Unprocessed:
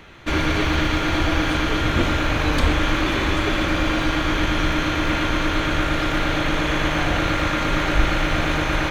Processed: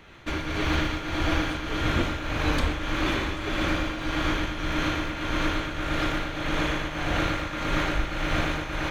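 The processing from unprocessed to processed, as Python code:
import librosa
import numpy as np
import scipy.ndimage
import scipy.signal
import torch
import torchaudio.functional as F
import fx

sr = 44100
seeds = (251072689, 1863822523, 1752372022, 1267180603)

y = fx.tremolo_shape(x, sr, shape='triangle', hz=1.7, depth_pct=65)
y = F.gain(torch.from_numpy(y), -3.5).numpy()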